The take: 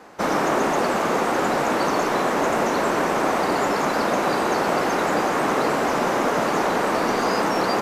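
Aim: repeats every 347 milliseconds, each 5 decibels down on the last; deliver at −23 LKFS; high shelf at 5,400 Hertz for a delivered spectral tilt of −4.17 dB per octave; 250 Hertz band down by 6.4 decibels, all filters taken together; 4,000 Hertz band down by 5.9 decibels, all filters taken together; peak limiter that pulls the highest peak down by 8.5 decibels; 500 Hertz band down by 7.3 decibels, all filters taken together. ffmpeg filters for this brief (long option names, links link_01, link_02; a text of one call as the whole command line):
ffmpeg -i in.wav -af "equalizer=frequency=250:width_type=o:gain=-5.5,equalizer=frequency=500:width_type=o:gain=-8,equalizer=frequency=4000:width_type=o:gain=-4.5,highshelf=frequency=5400:gain=-7.5,alimiter=limit=-21.5dB:level=0:latency=1,aecho=1:1:347|694|1041|1388|1735|2082|2429:0.562|0.315|0.176|0.0988|0.0553|0.031|0.0173,volume=5.5dB" out.wav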